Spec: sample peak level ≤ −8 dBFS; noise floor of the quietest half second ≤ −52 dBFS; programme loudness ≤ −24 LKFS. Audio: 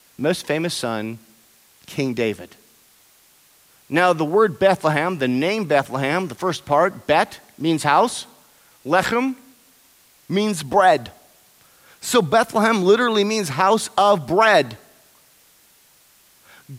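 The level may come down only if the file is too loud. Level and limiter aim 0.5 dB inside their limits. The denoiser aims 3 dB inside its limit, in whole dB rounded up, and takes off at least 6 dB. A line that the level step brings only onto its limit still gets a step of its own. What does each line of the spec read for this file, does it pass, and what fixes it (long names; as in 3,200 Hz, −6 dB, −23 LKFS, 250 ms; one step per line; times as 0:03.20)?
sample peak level −4.5 dBFS: out of spec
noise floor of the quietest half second −55 dBFS: in spec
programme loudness −19.0 LKFS: out of spec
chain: level −5.5 dB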